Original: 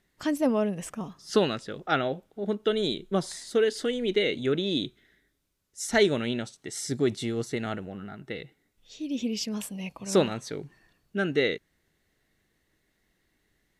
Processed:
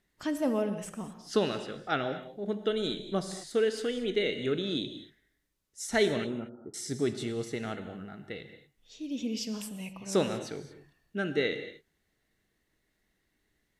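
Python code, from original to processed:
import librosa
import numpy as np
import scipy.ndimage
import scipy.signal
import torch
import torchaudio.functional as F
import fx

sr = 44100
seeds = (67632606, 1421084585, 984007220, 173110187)

y = fx.cheby_ripple(x, sr, hz=1400.0, ripple_db=3, at=(6.24, 6.74))
y = fx.rev_gated(y, sr, seeds[0], gate_ms=260, shape='flat', drr_db=8.5)
y = y * librosa.db_to_amplitude(-4.5)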